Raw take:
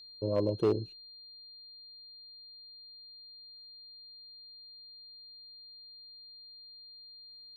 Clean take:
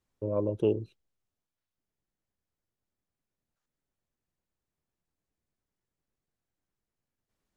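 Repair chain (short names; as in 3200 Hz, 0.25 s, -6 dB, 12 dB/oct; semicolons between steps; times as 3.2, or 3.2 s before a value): clip repair -20.5 dBFS; notch 4200 Hz, Q 30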